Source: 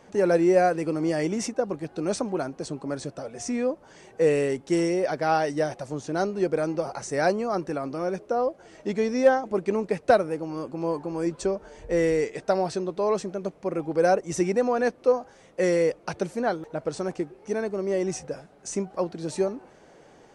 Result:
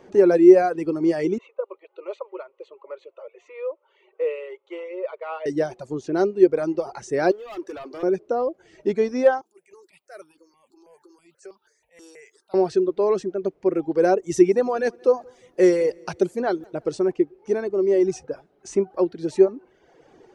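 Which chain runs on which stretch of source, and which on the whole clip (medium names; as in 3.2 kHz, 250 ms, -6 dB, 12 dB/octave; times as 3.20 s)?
1.38–5.46 s: elliptic band-pass 550–7400 Hz + distance through air 210 m + static phaser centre 1.1 kHz, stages 8
7.31–8.03 s: high-pass 520 Hz + hard clipper -33.5 dBFS + waveshaping leveller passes 1
9.41–12.54 s: differentiator + transient shaper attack -10 dB, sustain +5 dB + stepped phaser 6.2 Hz 550–2000 Hz
14.22–16.97 s: treble shelf 5.4 kHz +8 dB + feedback delay 176 ms, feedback 43%, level -17.5 dB
whole clip: peaking EQ 370 Hz +12 dB 0.46 oct; reverb removal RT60 1 s; peaking EQ 8.9 kHz -7.5 dB 0.95 oct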